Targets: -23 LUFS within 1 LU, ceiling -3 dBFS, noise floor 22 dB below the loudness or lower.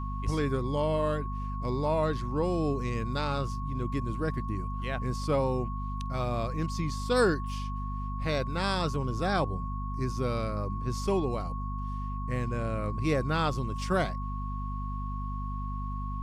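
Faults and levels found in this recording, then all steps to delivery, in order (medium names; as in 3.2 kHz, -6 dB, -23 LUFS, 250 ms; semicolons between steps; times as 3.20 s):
hum 50 Hz; highest harmonic 250 Hz; hum level -32 dBFS; steady tone 1.1 kHz; tone level -39 dBFS; loudness -31.5 LUFS; peak level -13.5 dBFS; loudness target -23.0 LUFS
-> hum notches 50/100/150/200/250 Hz; band-stop 1.1 kHz, Q 30; trim +8.5 dB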